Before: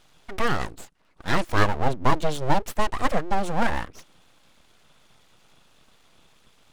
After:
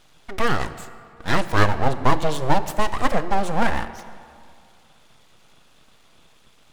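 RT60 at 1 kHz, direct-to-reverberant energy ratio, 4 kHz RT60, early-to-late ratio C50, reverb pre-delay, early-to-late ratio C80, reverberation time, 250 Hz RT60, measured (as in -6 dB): 2.3 s, 11.5 dB, 1.4 s, 13.0 dB, 5 ms, 14.0 dB, 2.3 s, 2.2 s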